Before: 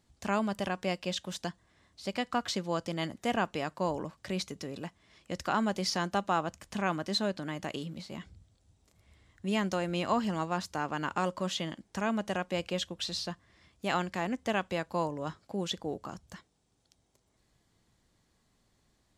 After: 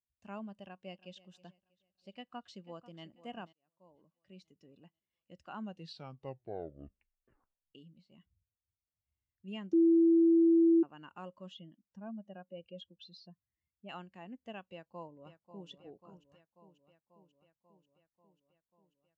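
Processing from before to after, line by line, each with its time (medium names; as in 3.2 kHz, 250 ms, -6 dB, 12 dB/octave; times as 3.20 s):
0.61–1.19 s: echo throw 320 ms, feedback 55%, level -14 dB
2.10–3.03 s: echo throw 490 ms, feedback 50%, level -11.5 dB
3.53–4.78 s: fade in
5.58 s: tape stop 2.17 s
9.73–10.83 s: bleep 332 Hz -15.5 dBFS
11.52–13.89 s: spectral contrast enhancement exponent 1.6
14.61–15.69 s: echo throw 540 ms, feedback 80%, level -8.5 dB
whole clip: peaking EQ 2.8 kHz +8.5 dB 0.21 oct; spectral contrast expander 1.5:1; trim -5.5 dB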